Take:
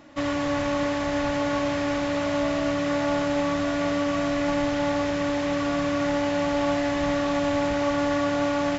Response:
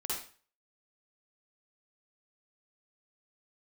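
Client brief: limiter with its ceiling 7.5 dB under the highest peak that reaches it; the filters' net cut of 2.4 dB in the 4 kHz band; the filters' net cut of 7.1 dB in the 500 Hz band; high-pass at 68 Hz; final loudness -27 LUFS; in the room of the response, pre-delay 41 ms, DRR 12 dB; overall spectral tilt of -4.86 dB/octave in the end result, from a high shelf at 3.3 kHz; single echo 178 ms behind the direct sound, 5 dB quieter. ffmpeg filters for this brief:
-filter_complex "[0:a]highpass=68,equalizer=f=500:t=o:g=-8.5,highshelf=f=3300:g=4.5,equalizer=f=4000:t=o:g=-6.5,alimiter=limit=0.0708:level=0:latency=1,aecho=1:1:178:0.562,asplit=2[s0][s1];[1:a]atrim=start_sample=2205,adelay=41[s2];[s1][s2]afir=irnorm=-1:irlink=0,volume=0.178[s3];[s0][s3]amix=inputs=2:normalize=0,volume=1.33"

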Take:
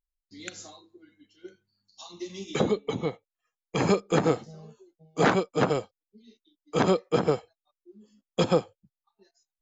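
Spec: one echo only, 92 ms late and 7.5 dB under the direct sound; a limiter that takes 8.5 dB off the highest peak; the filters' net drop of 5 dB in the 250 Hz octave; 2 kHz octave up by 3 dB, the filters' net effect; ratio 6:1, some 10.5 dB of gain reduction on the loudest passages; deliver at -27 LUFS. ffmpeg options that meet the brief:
-af "equalizer=f=250:t=o:g=-8,equalizer=f=2000:t=o:g=4,acompressor=threshold=0.0316:ratio=6,alimiter=level_in=1.06:limit=0.0631:level=0:latency=1,volume=0.944,aecho=1:1:92:0.422,volume=3.76"

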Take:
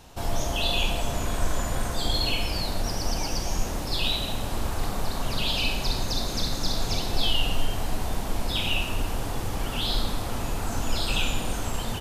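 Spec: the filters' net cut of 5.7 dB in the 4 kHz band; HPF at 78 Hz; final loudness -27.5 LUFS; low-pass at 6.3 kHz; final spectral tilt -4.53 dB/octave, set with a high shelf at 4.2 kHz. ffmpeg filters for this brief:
-af "highpass=78,lowpass=6300,equalizer=f=4000:t=o:g=-5,highshelf=f=4200:g=-3.5,volume=1.68"

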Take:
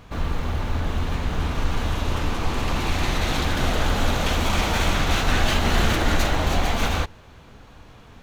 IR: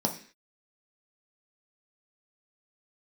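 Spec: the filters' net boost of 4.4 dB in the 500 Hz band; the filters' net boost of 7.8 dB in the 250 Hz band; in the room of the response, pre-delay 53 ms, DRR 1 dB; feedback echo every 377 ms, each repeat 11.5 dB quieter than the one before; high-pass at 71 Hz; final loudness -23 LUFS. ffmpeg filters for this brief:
-filter_complex "[0:a]highpass=71,equalizer=f=250:t=o:g=9,equalizer=f=500:t=o:g=3,aecho=1:1:377|754|1131:0.266|0.0718|0.0194,asplit=2[s0][s1];[1:a]atrim=start_sample=2205,adelay=53[s2];[s1][s2]afir=irnorm=-1:irlink=0,volume=0.355[s3];[s0][s3]amix=inputs=2:normalize=0,volume=0.398"

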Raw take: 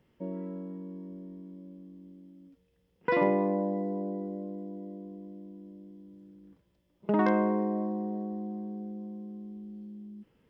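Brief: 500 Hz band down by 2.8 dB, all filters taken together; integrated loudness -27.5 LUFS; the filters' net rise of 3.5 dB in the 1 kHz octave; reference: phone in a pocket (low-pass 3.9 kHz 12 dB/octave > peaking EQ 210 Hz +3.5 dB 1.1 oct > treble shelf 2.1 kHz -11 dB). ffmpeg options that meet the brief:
-af "lowpass=3900,equalizer=f=210:t=o:w=1.1:g=3.5,equalizer=f=500:t=o:g=-5.5,equalizer=f=1000:t=o:g=8,highshelf=f=2100:g=-11,volume=1.58"

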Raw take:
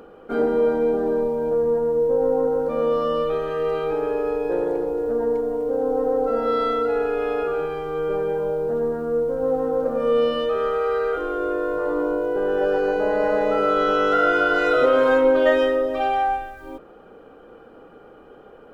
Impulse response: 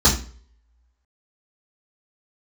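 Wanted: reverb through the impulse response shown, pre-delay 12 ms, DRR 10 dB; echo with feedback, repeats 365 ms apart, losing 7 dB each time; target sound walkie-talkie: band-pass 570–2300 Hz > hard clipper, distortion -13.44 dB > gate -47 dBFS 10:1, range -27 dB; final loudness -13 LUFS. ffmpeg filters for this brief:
-filter_complex "[0:a]aecho=1:1:365|730|1095|1460|1825:0.447|0.201|0.0905|0.0407|0.0183,asplit=2[s0][s1];[1:a]atrim=start_sample=2205,adelay=12[s2];[s1][s2]afir=irnorm=-1:irlink=0,volume=0.0335[s3];[s0][s3]amix=inputs=2:normalize=0,highpass=570,lowpass=2300,asoftclip=type=hard:threshold=0.112,agate=range=0.0447:threshold=0.00447:ratio=10,volume=3.98"

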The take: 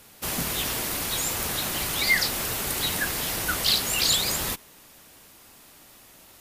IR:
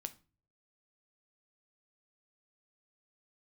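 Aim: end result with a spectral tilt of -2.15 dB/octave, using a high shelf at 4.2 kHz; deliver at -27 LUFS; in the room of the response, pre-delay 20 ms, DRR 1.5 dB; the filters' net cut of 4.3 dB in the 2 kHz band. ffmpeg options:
-filter_complex "[0:a]equalizer=f=2000:t=o:g=-4,highshelf=f=4200:g=-5,asplit=2[s0][s1];[1:a]atrim=start_sample=2205,adelay=20[s2];[s1][s2]afir=irnorm=-1:irlink=0,volume=1.19[s3];[s0][s3]amix=inputs=2:normalize=0,volume=0.841"

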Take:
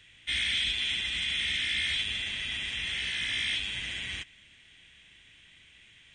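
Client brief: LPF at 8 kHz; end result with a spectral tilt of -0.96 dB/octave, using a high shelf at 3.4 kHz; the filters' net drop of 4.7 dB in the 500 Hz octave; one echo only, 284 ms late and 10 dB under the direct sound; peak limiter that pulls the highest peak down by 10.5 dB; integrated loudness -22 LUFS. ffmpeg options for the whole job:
-af "lowpass=8000,equalizer=f=500:t=o:g=-6.5,highshelf=f=3400:g=-4,alimiter=level_in=2:limit=0.0631:level=0:latency=1,volume=0.501,aecho=1:1:284:0.316,volume=5.62"

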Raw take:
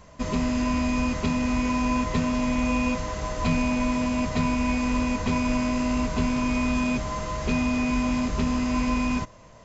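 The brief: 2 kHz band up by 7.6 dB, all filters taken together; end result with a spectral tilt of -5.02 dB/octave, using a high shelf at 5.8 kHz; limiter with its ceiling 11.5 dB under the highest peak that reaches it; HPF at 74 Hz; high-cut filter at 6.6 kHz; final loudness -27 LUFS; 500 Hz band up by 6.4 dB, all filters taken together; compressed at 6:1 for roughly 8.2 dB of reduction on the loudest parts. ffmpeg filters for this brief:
-af "highpass=74,lowpass=6600,equalizer=f=500:t=o:g=7.5,equalizer=f=2000:t=o:g=8.5,highshelf=f=5800:g=7,acompressor=threshold=0.0447:ratio=6,volume=2.99,alimiter=limit=0.112:level=0:latency=1"

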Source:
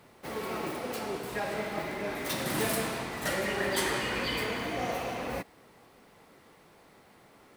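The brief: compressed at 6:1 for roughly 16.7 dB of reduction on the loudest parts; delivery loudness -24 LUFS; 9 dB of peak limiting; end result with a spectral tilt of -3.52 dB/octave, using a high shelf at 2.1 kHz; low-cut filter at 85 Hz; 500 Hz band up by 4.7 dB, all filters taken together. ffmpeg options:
-af "highpass=85,equalizer=f=500:t=o:g=5.5,highshelf=f=2100:g=5.5,acompressor=threshold=0.00891:ratio=6,volume=14.1,alimiter=limit=0.188:level=0:latency=1"

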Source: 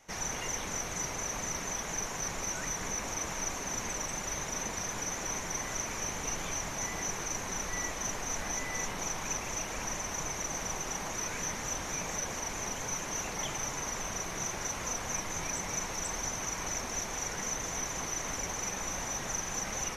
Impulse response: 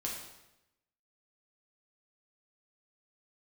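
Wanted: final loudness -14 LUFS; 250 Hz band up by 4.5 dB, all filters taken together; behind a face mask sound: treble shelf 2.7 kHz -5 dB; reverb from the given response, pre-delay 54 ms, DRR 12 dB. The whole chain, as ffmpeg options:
-filter_complex "[0:a]equalizer=f=250:t=o:g=6,asplit=2[s0][s1];[1:a]atrim=start_sample=2205,adelay=54[s2];[s1][s2]afir=irnorm=-1:irlink=0,volume=0.211[s3];[s0][s3]amix=inputs=2:normalize=0,highshelf=f=2700:g=-5,volume=12.6"

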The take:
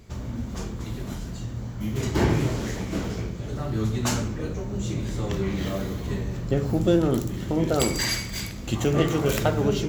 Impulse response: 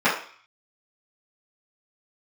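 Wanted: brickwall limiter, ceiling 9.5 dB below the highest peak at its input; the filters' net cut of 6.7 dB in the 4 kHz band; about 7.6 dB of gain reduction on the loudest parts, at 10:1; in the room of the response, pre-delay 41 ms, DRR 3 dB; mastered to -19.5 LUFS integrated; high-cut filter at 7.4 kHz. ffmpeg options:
-filter_complex "[0:a]lowpass=7400,equalizer=f=4000:t=o:g=-8.5,acompressor=threshold=0.0631:ratio=10,alimiter=limit=0.0668:level=0:latency=1,asplit=2[s0][s1];[1:a]atrim=start_sample=2205,adelay=41[s2];[s1][s2]afir=irnorm=-1:irlink=0,volume=0.075[s3];[s0][s3]amix=inputs=2:normalize=0,volume=4.47"

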